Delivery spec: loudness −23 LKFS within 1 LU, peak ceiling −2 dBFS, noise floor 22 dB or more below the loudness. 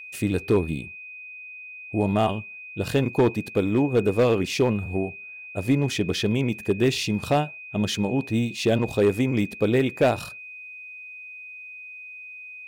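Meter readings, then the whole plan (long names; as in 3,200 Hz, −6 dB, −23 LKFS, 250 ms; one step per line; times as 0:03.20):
share of clipped samples 0.7%; peaks flattened at −13.0 dBFS; interfering tone 2,500 Hz; level of the tone −38 dBFS; integrated loudness −24.0 LKFS; sample peak −13.0 dBFS; target loudness −23.0 LKFS
→ clipped peaks rebuilt −13 dBFS
notch filter 2,500 Hz, Q 30
level +1 dB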